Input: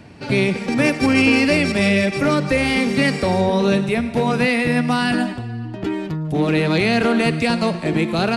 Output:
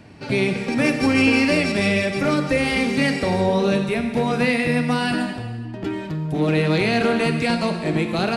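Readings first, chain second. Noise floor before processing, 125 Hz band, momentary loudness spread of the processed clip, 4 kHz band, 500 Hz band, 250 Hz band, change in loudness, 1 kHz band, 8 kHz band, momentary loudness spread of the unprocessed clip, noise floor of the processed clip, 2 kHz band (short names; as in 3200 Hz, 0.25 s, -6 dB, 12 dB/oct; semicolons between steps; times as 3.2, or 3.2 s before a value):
-31 dBFS, -2.0 dB, 9 LU, -2.0 dB, -1.5 dB, -2.5 dB, -2.0 dB, -2.5 dB, -2.0 dB, 8 LU, -32 dBFS, -2.0 dB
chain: non-linear reverb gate 0.44 s falling, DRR 6.5 dB; gain -3 dB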